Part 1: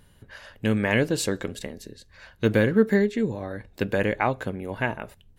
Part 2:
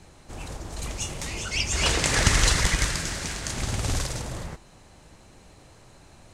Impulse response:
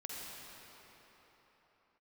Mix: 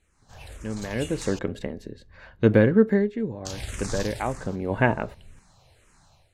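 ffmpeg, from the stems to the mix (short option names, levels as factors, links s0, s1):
-filter_complex "[0:a]lowpass=f=1200:p=1,volume=1.58,afade=t=in:st=0.9:d=0.66:silence=0.223872,afade=t=out:st=2.58:d=0.55:silence=0.421697,afade=t=in:st=4.42:d=0.36:silence=0.281838[s0];[1:a]equalizer=f=310:t=o:w=1.4:g=-8.5,asplit=2[s1][s2];[s2]afreqshift=-1.9[s3];[s1][s3]amix=inputs=2:normalize=1,volume=0.211,asplit=3[s4][s5][s6];[s4]atrim=end=1.39,asetpts=PTS-STARTPTS,afade=t=out:st=1.386:d=0.004:c=hsin[s7];[s5]atrim=start=1.39:end=3.45,asetpts=PTS-STARTPTS,volume=0[s8];[s6]atrim=start=3.45,asetpts=PTS-STARTPTS,afade=t=in:d=0.004:c=hsin[s9];[s7][s8][s9]concat=n=3:v=0:a=1[s10];[s0][s10]amix=inputs=2:normalize=0,dynaudnorm=f=110:g=5:m=3.76"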